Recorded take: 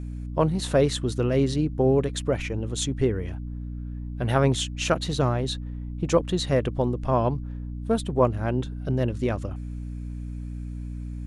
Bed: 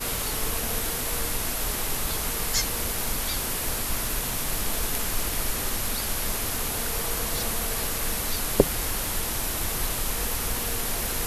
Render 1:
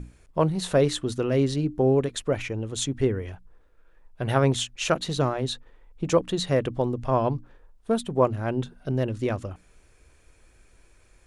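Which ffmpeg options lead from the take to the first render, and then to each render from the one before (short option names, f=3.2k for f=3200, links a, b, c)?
-af "bandreject=f=60:t=h:w=6,bandreject=f=120:t=h:w=6,bandreject=f=180:t=h:w=6,bandreject=f=240:t=h:w=6,bandreject=f=300:t=h:w=6"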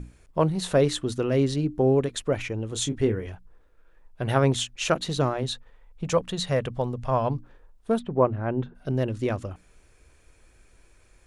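-filter_complex "[0:a]asettb=1/sr,asplit=3[a][b][c];[a]atrim=end=2.684[d];[b]atrim=start=2.68:end=3.27,asetpts=PTS-STARTPTS,afade=t=in:d=0.004:c=qsin,afade=t=out:st=0.586:d=0.004:c=qsin,asplit=2[e][f];[f]adelay=27,volume=-9dB[g];[e][g]amix=inputs=2:normalize=0,atrim=end_sample=26019[h];[c]atrim=start=3.266[i];[d][h]acrossfade=d=0.004:c1=hsin:c2=qsin[j];[j][i]acrossfade=d=0.004:c1=qsin:c2=hsin,asettb=1/sr,asplit=3[k][l][m];[k]atrim=end=5.434[n];[l]atrim=start=5.43:end=7.3,asetpts=PTS-STARTPTS,afade=t=in:d=0.004:c=qsin,afade=t=out:st=1.866:d=0.004:c=qsin,equalizer=f=320:t=o:w=0.56:g=-11[o];[m]atrim=start=7.296[p];[n][o]acrossfade=d=0.004:c1=hsin:c2=qsin[q];[q][p]acrossfade=d=0.004:c1=qsin:c2=hsin,asplit=3[r][s][t];[r]afade=t=out:st=7.98:d=0.02[u];[s]lowpass=2k,afade=t=in:st=7.98:d=0.02,afade=t=out:st=8.74:d=0.02[v];[t]afade=t=in:st=8.74:d=0.02[w];[u][v][w]amix=inputs=3:normalize=0"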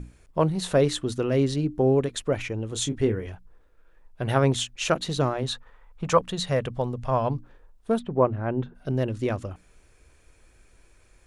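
-filter_complex "[0:a]asettb=1/sr,asplit=3[a][b][c];[a]atrim=end=5.464[d];[b]atrim=start=5.46:end=6.19,asetpts=PTS-STARTPTS,afade=t=in:d=0.004:c=qsin,afade=t=out:st=0.726:d=0.004:c=qsin,equalizer=f=1.2k:w=1.1:g=9[e];[c]atrim=start=6.186[f];[d][e]acrossfade=d=0.004:c1=hsin:c2=qsin[g];[g][f]acrossfade=d=0.004:c1=qsin:c2=hsin"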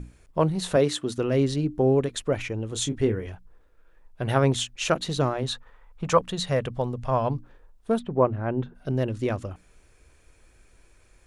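-filter_complex "[0:a]asettb=1/sr,asplit=3[a][b][c];[a]atrim=end=0.764[d];[b]atrim=start=0.76:end=1.18,asetpts=PTS-STARTPTS,afade=t=in:d=0.004:c=qsin,afade=t=out:st=0.416:d=0.004:c=qsin,highpass=150[e];[c]atrim=start=1.176[f];[d][e]acrossfade=d=0.004:c1=hsin:c2=qsin[g];[g][f]acrossfade=d=0.004:c1=qsin:c2=hsin"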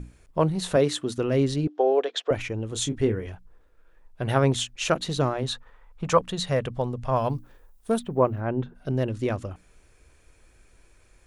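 -filter_complex "[0:a]asettb=1/sr,asplit=3[a][b][c];[a]atrim=end=1.674[d];[b]atrim=start=1.67:end=2.31,asetpts=PTS-STARTPTS,afade=t=in:d=0.004:c=qsin,afade=t=out:st=0.636:d=0.004:c=qsin,highpass=f=390:w=0.5412,highpass=f=390:w=1.3066,equalizer=f=470:t=q:w=4:g=4,equalizer=f=720:t=q:w=4:g=9,equalizer=f=1.6k:t=q:w=4:g=4,equalizer=f=3.3k:t=q:w=4:g=8,lowpass=f=6k:w=0.5412,lowpass=f=6k:w=1.3066[e];[c]atrim=start=2.306[f];[d][e]acrossfade=d=0.004:c1=hsin:c2=qsin[g];[g][f]acrossfade=d=0.004:c1=qsin:c2=hsin,asettb=1/sr,asplit=3[h][i][j];[h]atrim=end=7.164[k];[i]atrim=start=7.16:end=8.41,asetpts=PTS-STARTPTS,afade=t=in:d=0.004:c=qsin,afade=t=out:st=1.246:d=0.004:c=qsin,aemphasis=mode=production:type=50fm[l];[j]atrim=start=8.406[m];[k][l]acrossfade=d=0.004:c1=hsin:c2=qsin[n];[n][m]acrossfade=d=0.004:c1=qsin:c2=hsin"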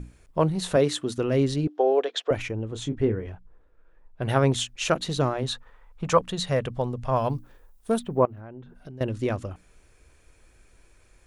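-filter_complex "[0:a]asettb=1/sr,asplit=3[a][b][c];[a]atrim=end=2.514[d];[b]atrim=start=2.51:end=4.22,asetpts=PTS-STARTPTS,afade=t=in:d=0.004:c=qsin,afade=t=out:st=1.706:d=0.004:c=qsin,lowpass=f=1.7k:p=1[e];[c]atrim=start=4.216[f];[d][e]acrossfade=d=0.004:c1=hsin:c2=qsin[g];[g][f]acrossfade=d=0.004:c1=qsin:c2=hsin,asettb=1/sr,asplit=3[h][i][j];[h]atrim=end=8.254[k];[i]atrim=start=8.25:end=9.01,asetpts=PTS-STARTPTS,afade=t=in:d=0.004:c=qsin,afade=t=out:st=0.756:d=0.004:c=qsin,acompressor=threshold=-37dB:ratio=16:attack=3.2:release=140:knee=1:detection=peak[l];[j]atrim=start=9.006[m];[k][l]acrossfade=d=0.004:c1=hsin:c2=qsin[n];[n][m]acrossfade=d=0.004:c1=qsin:c2=hsin"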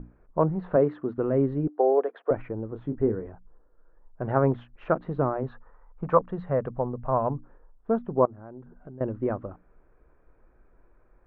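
-af "lowpass=f=1.4k:w=0.5412,lowpass=f=1.4k:w=1.3066,equalizer=f=80:t=o:w=1:g=-10.5"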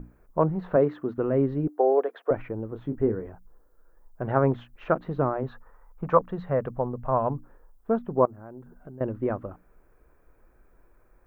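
-af "aemphasis=mode=production:type=75kf"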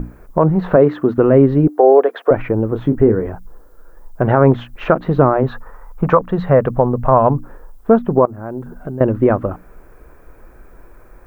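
-filter_complex "[0:a]asplit=2[a][b];[b]acompressor=threshold=-30dB:ratio=6,volume=0dB[c];[a][c]amix=inputs=2:normalize=0,alimiter=level_in=11dB:limit=-1dB:release=50:level=0:latency=1"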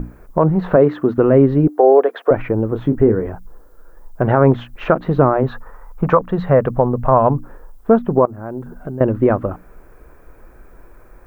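-af "volume=-1dB"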